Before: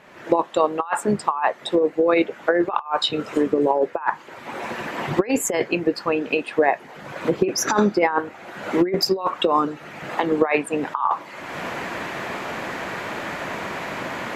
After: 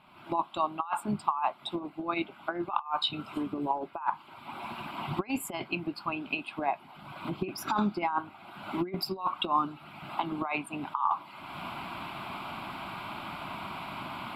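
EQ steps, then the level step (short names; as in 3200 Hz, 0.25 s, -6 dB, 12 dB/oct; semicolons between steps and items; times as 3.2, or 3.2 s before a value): fixed phaser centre 1800 Hz, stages 6; -6.0 dB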